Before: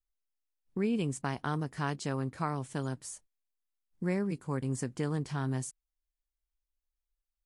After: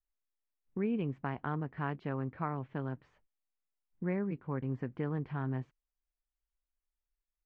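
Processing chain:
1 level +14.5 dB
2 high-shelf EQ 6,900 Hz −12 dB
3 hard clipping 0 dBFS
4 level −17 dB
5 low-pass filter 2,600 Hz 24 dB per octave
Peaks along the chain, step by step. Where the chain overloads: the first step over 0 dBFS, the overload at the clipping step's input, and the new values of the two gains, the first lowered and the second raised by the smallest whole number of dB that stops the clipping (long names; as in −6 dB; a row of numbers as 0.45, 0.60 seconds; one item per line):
−4.5, −4.5, −4.5, −21.5, −21.5 dBFS
no step passes full scale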